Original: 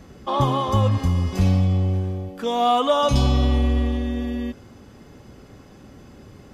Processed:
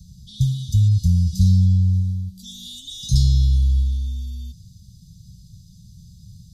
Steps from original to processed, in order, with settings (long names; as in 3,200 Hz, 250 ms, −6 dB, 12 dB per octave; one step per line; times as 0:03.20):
Chebyshev band-stop filter 180–3,800 Hz, order 5
level +4.5 dB